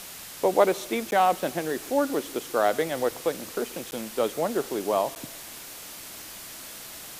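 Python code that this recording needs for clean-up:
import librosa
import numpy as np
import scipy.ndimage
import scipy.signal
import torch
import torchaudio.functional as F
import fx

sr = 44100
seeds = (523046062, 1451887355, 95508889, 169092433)

y = fx.fix_interpolate(x, sr, at_s=(1.11, 3.91, 5.15), length_ms=9.9)
y = fx.noise_reduce(y, sr, print_start_s=5.41, print_end_s=5.91, reduce_db=29.0)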